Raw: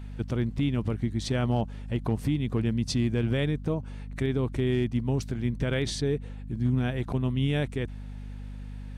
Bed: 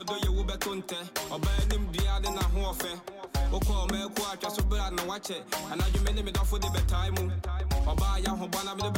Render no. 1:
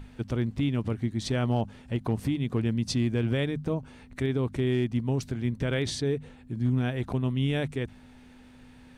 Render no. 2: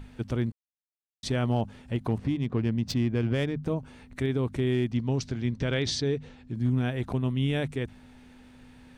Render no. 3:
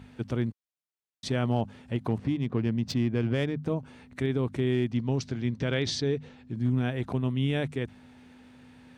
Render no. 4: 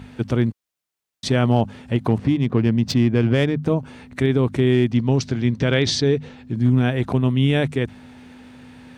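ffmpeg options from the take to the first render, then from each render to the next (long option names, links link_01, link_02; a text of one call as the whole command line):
ffmpeg -i in.wav -af "bandreject=frequency=50:width_type=h:width=6,bandreject=frequency=100:width_type=h:width=6,bandreject=frequency=150:width_type=h:width=6,bandreject=frequency=200:width_type=h:width=6" out.wav
ffmpeg -i in.wav -filter_complex "[0:a]asettb=1/sr,asplit=3[link_01][link_02][link_03];[link_01]atrim=end=2.184[link_04];[link_02]atrim=start=2.18:end=3.63,asetpts=PTS-STARTPTS,afade=type=in:duration=0.004:curve=qsin,afade=type=out:start_time=1.446:duration=0.004:curve=qsin,adynamicsmooth=sensitivity=5:basefreq=2400[link_05];[link_03]atrim=start=3.626[link_06];[link_04][link_05]acrossfade=duration=0.004:curve1=hsin:curve2=qsin[link_07];[link_07][link_06]acrossfade=duration=0.004:curve1=qsin:curve2=hsin,asettb=1/sr,asplit=3[link_08][link_09][link_10];[link_08]atrim=end=4.924[link_11];[link_09]atrim=start=4.92:end=6.55,asetpts=PTS-STARTPTS,afade=type=in:duration=0.004:curve=qsin,afade=type=out:start_time=1.626:duration=0.004:curve=qsin,lowpass=frequency=5500:width_type=q:width=1.8[link_12];[link_10]atrim=start=6.546[link_13];[link_11][link_12]acrossfade=duration=0.004:curve1=hsin:curve2=qsin[link_14];[link_14][link_13]acrossfade=duration=0.004:curve1=qsin:curve2=hsin,asplit=3[link_15][link_16][link_17];[link_15]atrim=end=0.52,asetpts=PTS-STARTPTS,afade=type=out:start_time=0.516:duration=0.004:curve=hsin[link_18];[link_16]atrim=start=0.52:end=1.23,asetpts=PTS-STARTPTS,volume=0[link_19];[link_17]atrim=start=1.23,asetpts=PTS-STARTPTS,afade=type=in:duration=0.004:curve=hsin[link_20];[link_18][link_19][link_20]concat=n=3:v=0:a=1" out.wav
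ffmpeg -i in.wav -af "highpass=88,highshelf=frequency=7600:gain=-5.5" out.wav
ffmpeg -i in.wav -af "volume=9.5dB" out.wav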